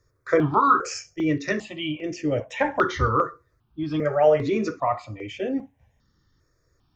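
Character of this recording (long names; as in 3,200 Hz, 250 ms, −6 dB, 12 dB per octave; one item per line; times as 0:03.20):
notches that jump at a steady rate 2.5 Hz 800–3,900 Hz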